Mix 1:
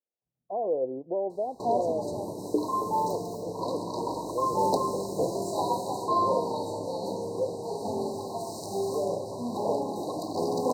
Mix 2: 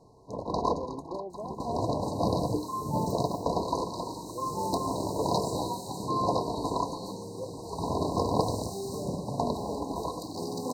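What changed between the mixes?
first sound: unmuted
master: add parametric band 590 Hz −10.5 dB 1.7 octaves

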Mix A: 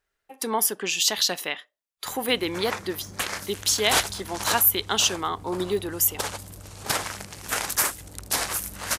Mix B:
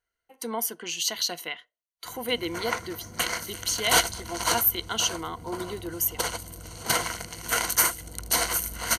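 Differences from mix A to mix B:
speech −7.0 dB
master: add EQ curve with evenly spaced ripples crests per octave 1.9, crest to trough 11 dB

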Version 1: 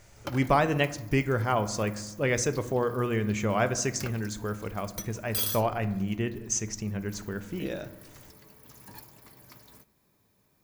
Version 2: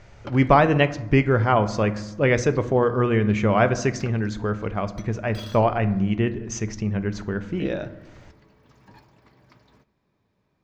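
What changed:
speech +8.0 dB
master: add high-frequency loss of the air 190 metres

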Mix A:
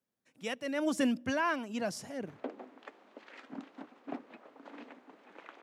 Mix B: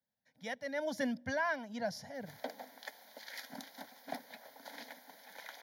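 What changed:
background: remove head-to-tape spacing loss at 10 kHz 38 dB
master: add phaser with its sweep stopped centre 1,800 Hz, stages 8

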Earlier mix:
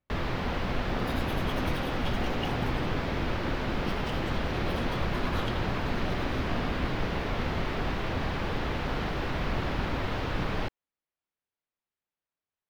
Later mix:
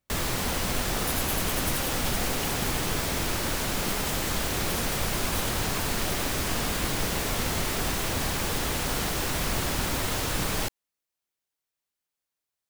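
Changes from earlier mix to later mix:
second sound −9.0 dB
master: remove high-frequency loss of the air 320 metres

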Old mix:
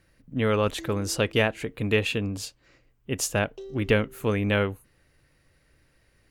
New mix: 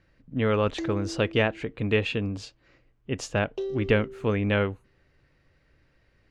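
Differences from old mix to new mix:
background +9.5 dB
master: add high-frequency loss of the air 130 metres

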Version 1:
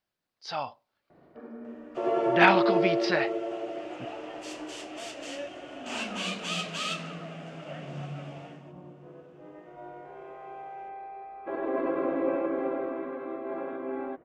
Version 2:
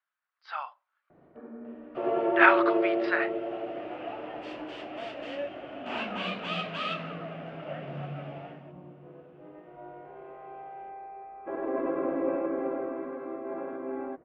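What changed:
speech: add high-pass with resonance 1,300 Hz, resonance Q 2.5
second sound +5.0 dB
master: add high-frequency loss of the air 410 metres

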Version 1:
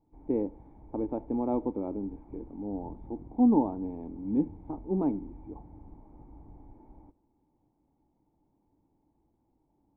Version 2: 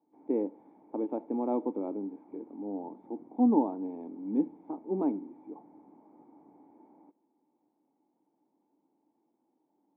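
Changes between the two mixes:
first sound: send −7.0 dB
second sound: unmuted
master: add high-pass filter 230 Hz 24 dB per octave

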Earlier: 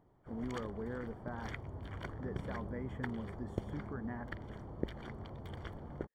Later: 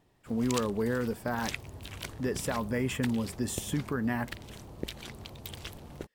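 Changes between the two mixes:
speech +12.0 dB
master: remove Savitzky-Golay smoothing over 41 samples

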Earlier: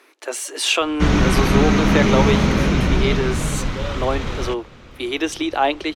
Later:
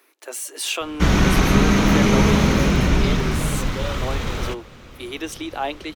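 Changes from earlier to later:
speech −8.0 dB
master: remove high-frequency loss of the air 50 metres

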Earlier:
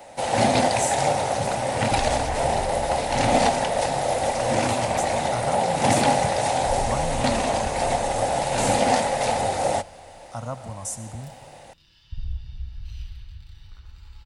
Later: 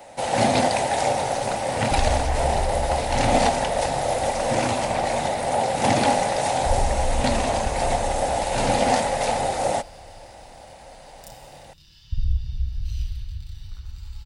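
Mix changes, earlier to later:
speech: muted
second sound: add bass and treble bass +8 dB, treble +11 dB

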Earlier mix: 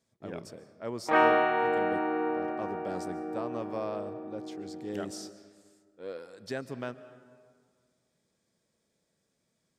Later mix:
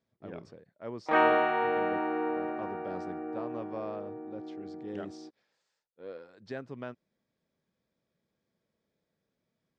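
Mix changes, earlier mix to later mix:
speech: add high-frequency loss of the air 180 metres
reverb: off

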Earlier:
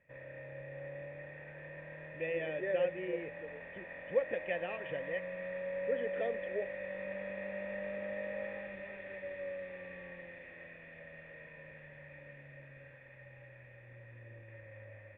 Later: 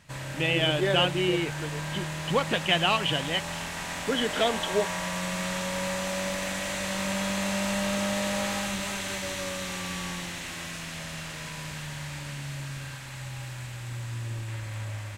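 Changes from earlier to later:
speech: entry −1.80 s
master: remove formant resonators in series e

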